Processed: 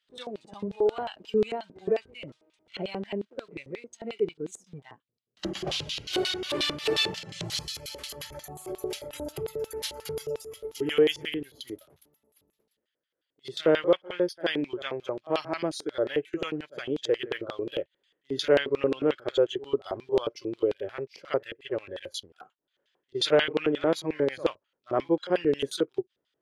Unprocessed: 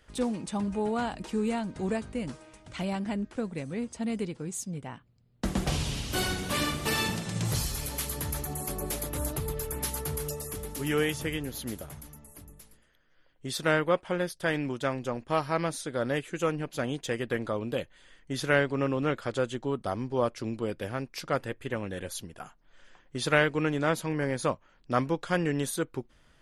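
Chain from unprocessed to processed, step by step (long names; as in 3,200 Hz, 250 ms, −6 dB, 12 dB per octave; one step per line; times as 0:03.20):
high-pass filter 41 Hz 12 dB per octave
backwards echo 65 ms −15 dB
in parallel at −5 dB: centre clipping without the shift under −38 dBFS
on the sum: noise reduction from a noise print of the clip's start 13 dB
auto-filter band-pass square 5.6 Hz 420–3,600 Hz
level +6.5 dB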